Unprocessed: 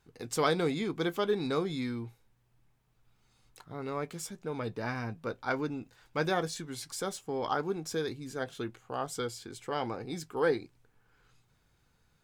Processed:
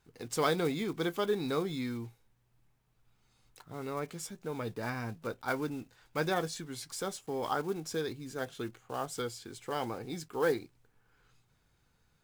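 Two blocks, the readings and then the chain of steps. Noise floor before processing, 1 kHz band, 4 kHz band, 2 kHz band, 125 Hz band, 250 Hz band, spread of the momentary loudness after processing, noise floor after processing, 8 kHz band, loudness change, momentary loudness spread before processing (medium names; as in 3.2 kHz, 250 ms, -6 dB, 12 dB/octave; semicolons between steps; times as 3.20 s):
-71 dBFS, -1.5 dB, -1.5 dB, -1.5 dB, -1.5 dB, -1.5 dB, 9 LU, -73 dBFS, -1.0 dB, -1.5 dB, 9 LU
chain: block-companded coder 5-bit; trim -1.5 dB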